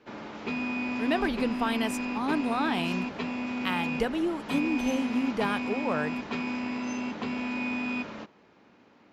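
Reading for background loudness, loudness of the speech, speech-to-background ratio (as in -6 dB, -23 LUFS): -32.5 LUFS, -30.5 LUFS, 2.0 dB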